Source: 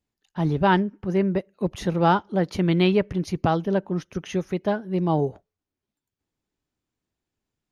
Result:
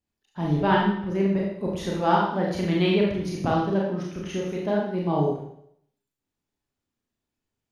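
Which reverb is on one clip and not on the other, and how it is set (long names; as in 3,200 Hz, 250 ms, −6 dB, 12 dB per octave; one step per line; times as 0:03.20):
four-comb reverb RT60 0.69 s, combs from 27 ms, DRR −3.5 dB
level −5.5 dB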